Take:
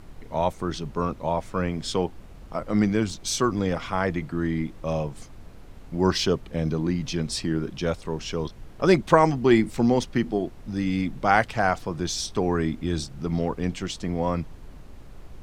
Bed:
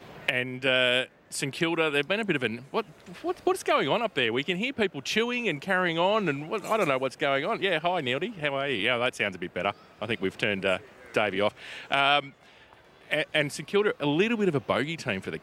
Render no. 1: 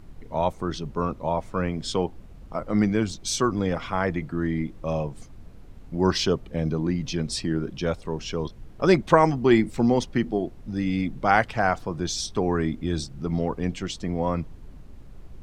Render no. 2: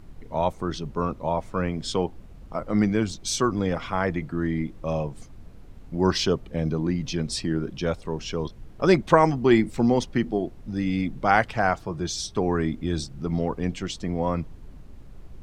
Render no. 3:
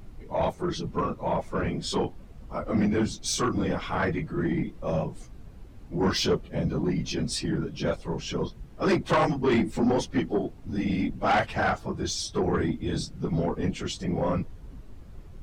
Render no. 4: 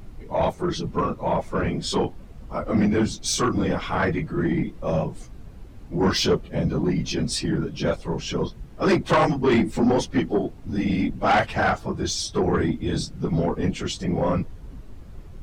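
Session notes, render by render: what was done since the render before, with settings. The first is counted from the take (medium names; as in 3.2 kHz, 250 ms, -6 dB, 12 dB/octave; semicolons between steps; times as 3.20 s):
noise reduction 6 dB, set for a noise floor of -45 dBFS
11.75–12.37 s: comb of notches 250 Hz
phase randomisation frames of 50 ms; saturation -17.5 dBFS, distortion -12 dB
trim +4 dB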